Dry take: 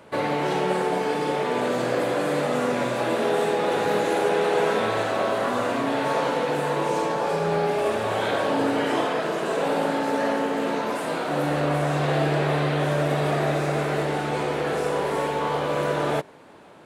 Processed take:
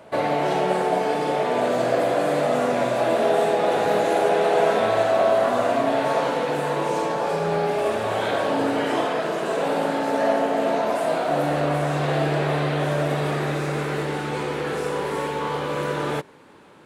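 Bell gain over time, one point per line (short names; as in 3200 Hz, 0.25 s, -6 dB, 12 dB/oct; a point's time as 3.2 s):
bell 670 Hz 0.3 oct
5.86 s +10.5 dB
6.39 s +3 dB
9.92 s +3 dB
10.39 s +12.5 dB
11.16 s +12.5 dB
11.89 s +1 dB
13.04 s +1 dB
13.46 s -9.5 dB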